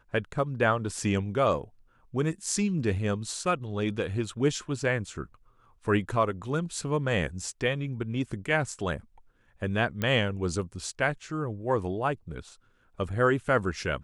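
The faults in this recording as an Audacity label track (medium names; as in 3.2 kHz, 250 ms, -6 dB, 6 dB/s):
10.020000	10.020000	pop -16 dBFS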